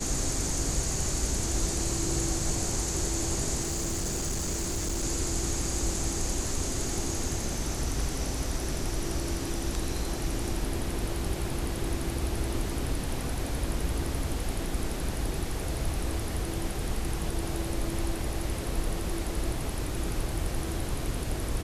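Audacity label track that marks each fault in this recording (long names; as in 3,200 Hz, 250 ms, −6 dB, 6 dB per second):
3.620000	5.040000	clipping −26.5 dBFS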